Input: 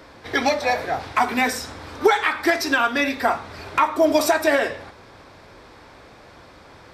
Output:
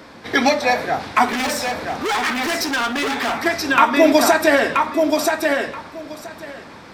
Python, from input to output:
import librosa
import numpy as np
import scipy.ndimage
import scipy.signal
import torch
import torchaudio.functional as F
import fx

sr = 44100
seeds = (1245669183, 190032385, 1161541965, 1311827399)

y = fx.peak_eq(x, sr, hz=200.0, db=13.0, octaves=1.2)
y = fx.echo_feedback(y, sr, ms=979, feedback_pct=16, wet_db=-4)
y = fx.overload_stage(y, sr, gain_db=21.0, at=(1.26, 3.46))
y = fx.low_shelf(y, sr, hz=390.0, db=-9.5)
y = y * librosa.db_to_amplitude(4.5)